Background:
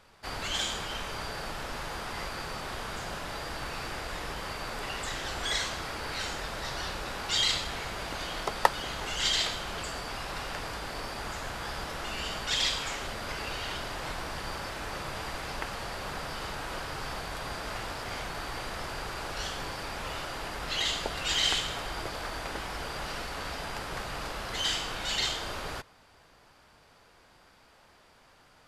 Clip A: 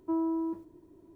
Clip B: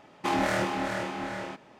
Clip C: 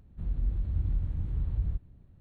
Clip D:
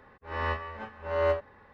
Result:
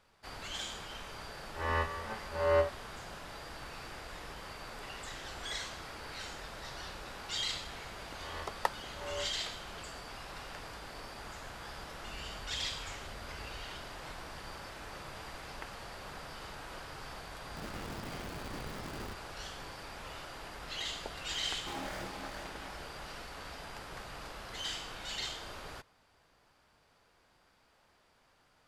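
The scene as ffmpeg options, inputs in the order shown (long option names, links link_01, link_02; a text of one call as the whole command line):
ffmpeg -i bed.wav -i cue0.wav -i cue1.wav -i cue2.wav -i cue3.wav -filter_complex "[4:a]asplit=2[link_01][link_02];[3:a]asplit=2[link_03][link_04];[0:a]volume=-9dB[link_05];[link_03]acompressor=threshold=-37dB:ratio=6:attack=3.2:release=140:knee=1:detection=peak[link_06];[link_04]aeval=exprs='(mod(29.9*val(0)+1,2)-1)/29.9':channel_layout=same[link_07];[2:a]acrusher=bits=4:mix=0:aa=0.5[link_08];[link_01]atrim=end=1.73,asetpts=PTS-STARTPTS,volume=-1.5dB,afade=type=in:duration=0.004:curve=hsin,afade=type=out:start_time=1.726:duration=0.004:curve=hsin,adelay=1290[link_09];[link_02]atrim=end=1.73,asetpts=PTS-STARTPTS,volume=-15dB,afade=type=in:duration=0.004:curve=hsin,afade=type=out:start_time=1.726:duration=0.004:curve=hsin,adelay=7900[link_10];[link_06]atrim=end=2.2,asetpts=PTS-STARTPTS,volume=-10.5dB,afade=type=in:duration=0.004:curve=hsin,afade=type=out:start_time=2.196:duration=0.004:curve=hsin,adelay=11870[link_11];[link_07]atrim=end=2.2,asetpts=PTS-STARTPTS,volume=-10dB,afade=type=in:duration=0.004:curve=hsin,afade=type=out:start_time=2.196:duration=0.004:curve=hsin,adelay=17360[link_12];[link_08]atrim=end=1.79,asetpts=PTS-STARTPTS,volume=-16dB,afade=type=in:duration=0.004:curve=hsin,afade=type=out:start_time=1.786:duration=0.004:curve=hsin,adelay=21420[link_13];[link_05][link_09][link_10][link_11][link_12][link_13]amix=inputs=6:normalize=0" out.wav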